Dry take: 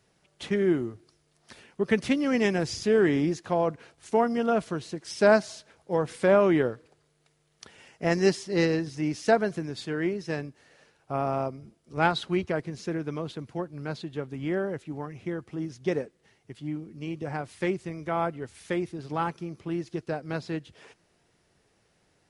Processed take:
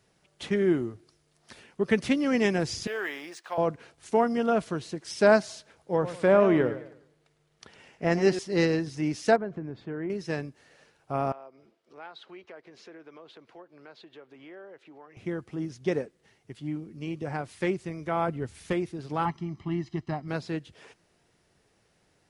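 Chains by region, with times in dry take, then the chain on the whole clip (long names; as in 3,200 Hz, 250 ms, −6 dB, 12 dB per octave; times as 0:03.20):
0:02.87–0:03.58: high-pass filter 910 Hz + linearly interpolated sample-rate reduction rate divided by 3×
0:05.91–0:08.39: high-shelf EQ 5,200 Hz −8.5 dB + feedback echo with a swinging delay time 102 ms, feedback 35%, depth 144 cents, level −12 dB
0:09.36–0:10.10: Bessel low-pass filter 1,200 Hz + downward compressor 2 to 1, threshold −33 dBFS
0:11.32–0:15.17: three-way crossover with the lows and the highs turned down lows −23 dB, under 340 Hz, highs −17 dB, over 4,700 Hz + downward compressor 2.5 to 1, threshold −50 dBFS
0:18.28–0:18.73: low-shelf EQ 250 Hz +8.5 dB + gain into a clipping stage and back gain 20.5 dB
0:19.25–0:20.28: high-frequency loss of the air 120 metres + comb filter 1 ms, depth 84%
whole clip: no processing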